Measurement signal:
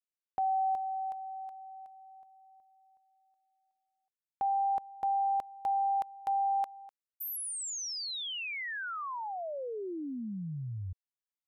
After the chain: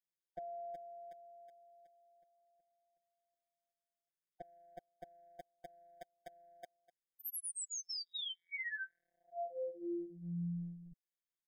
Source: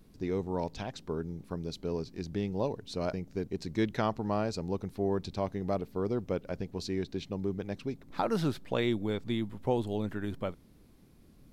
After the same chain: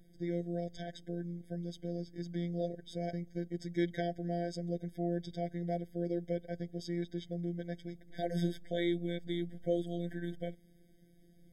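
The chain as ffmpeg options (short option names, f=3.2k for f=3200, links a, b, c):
-af "afftfilt=real='hypot(re,im)*cos(PI*b)':imag='0':win_size=1024:overlap=0.75,afftfilt=real='re*eq(mod(floor(b*sr/1024/770),2),0)':imag='im*eq(mod(floor(b*sr/1024/770),2),0)':win_size=1024:overlap=0.75"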